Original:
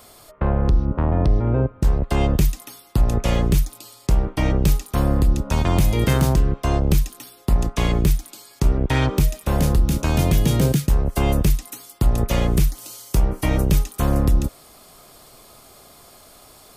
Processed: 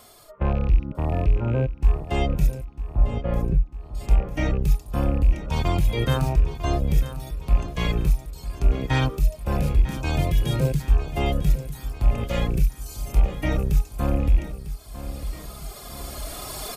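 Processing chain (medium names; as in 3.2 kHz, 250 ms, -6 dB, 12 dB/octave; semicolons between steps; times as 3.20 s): rattle on loud lows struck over -15 dBFS, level -24 dBFS; recorder AGC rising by 9.1 dB/s; 2.65–3.95 s: low-pass 1.1 kHz 12 dB/octave; reverb removal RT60 1.5 s; harmonic-percussive split percussive -17 dB; feedback delay 949 ms, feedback 57%, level -13 dB; trim +1 dB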